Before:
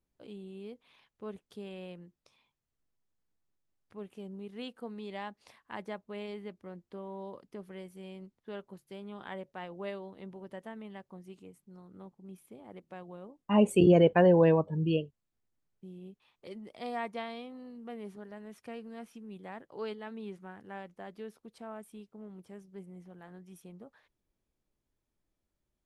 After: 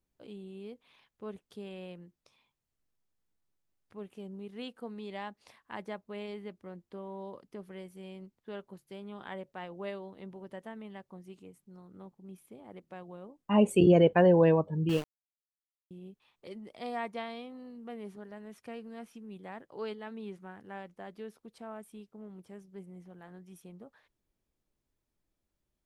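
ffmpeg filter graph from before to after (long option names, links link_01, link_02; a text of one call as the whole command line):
ffmpeg -i in.wav -filter_complex "[0:a]asettb=1/sr,asplit=3[link_01][link_02][link_03];[link_01]atrim=end=14.894[link_04];[link_02]atrim=start=14.89:end=15.91,asetpts=PTS-STARTPTS,afade=type=in:duration=0.004:curve=qsin,afade=type=out:start_time=1.016:duration=0.004:curve=qsin,highpass=68,aeval=exprs='val(0)*gte(abs(val(0)),0.0168)':channel_layout=same[link_05];[link_03]atrim=start=15.906[link_06];[link_04][link_05]acrossfade=duration=0.004:curve1=hsin:curve2=qsin[link_07];[link_07][link_06]acrossfade=duration=0.004:curve1=qsin:curve2=hsin" out.wav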